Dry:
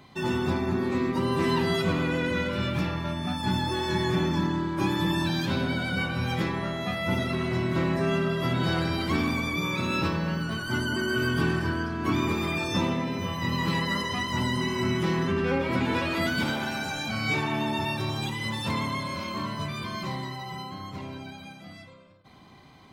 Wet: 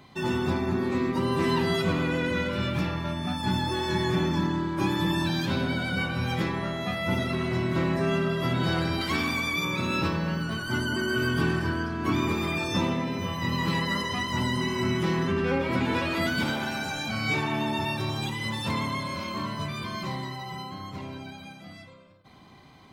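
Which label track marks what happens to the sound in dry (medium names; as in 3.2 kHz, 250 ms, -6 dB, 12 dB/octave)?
9.010000	9.650000	tilt shelf lows -4.5 dB, about 890 Hz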